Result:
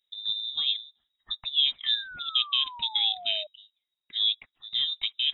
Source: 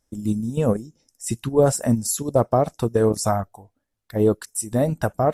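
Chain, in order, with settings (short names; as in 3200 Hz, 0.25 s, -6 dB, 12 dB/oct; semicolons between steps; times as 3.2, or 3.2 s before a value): inverted band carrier 3800 Hz; painted sound fall, 1.84–3.47, 600–1800 Hz -34 dBFS; gain -8 dB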